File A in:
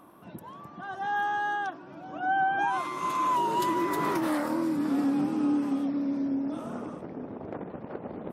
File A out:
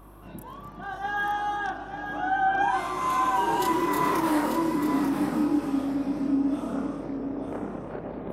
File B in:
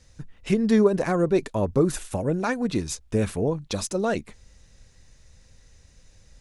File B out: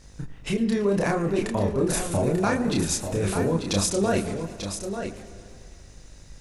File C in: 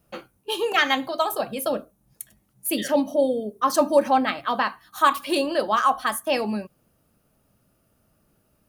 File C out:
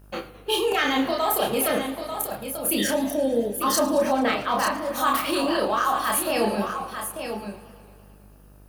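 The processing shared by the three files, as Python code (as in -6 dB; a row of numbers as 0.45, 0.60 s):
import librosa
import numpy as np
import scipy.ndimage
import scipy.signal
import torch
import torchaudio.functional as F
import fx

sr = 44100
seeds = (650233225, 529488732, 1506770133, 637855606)

p1 = fx.high_shelf(x, sr, hz=9800.0, db=4.5)
p2 = fx.over_compress(p1, sr, threshold_db=-26.0, ratio=-0.5)
p3 = p1 + (p2 * 10.0 ** (2.5 / 20.0))
p4 = fx.doubler(p3, sr, ms=30.0, db=-2)
p5 = p4 + 10.0 ** (-8.0 / 20.0) * np.pad(p4, (int(891 * sr / 1000.0), 0))[:len(p4)]
p6 = fx.rev_spring(p5, sr, rt60_s=2.2, pass_ms=(40,), chirp_ms=55, drr_db=15.5)
p7 = fx.dmg_buzz(p6, sr, base_hz=50.0, harmonics=36, level_db=-43.0, tilt_db=-7, odd_only=False)
p8 = fx.echo_warbled(p7, sr, ms=111, feedback_pct=74, rate_hz=2.8, cents=175, wet_db=-17.5)
y = p8 * 10.0 ** (-7.5 / 20.0)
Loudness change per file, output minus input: +2.0, -0.5, -0.5 LU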